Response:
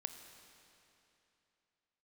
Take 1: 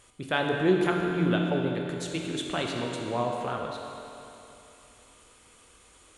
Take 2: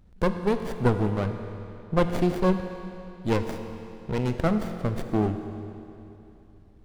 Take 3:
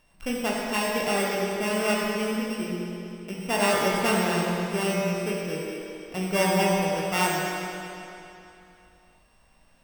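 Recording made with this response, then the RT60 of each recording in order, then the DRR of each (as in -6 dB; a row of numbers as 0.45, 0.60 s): 2; 3.0, 3.0, 3.0 s; 0.5, 7.0, -4.0 dB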